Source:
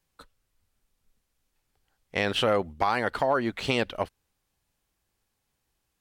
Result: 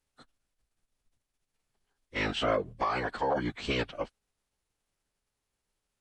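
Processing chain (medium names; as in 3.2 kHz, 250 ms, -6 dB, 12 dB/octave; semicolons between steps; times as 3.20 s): formant-preserving pitch shift -11.5 st; trim -3.5 dB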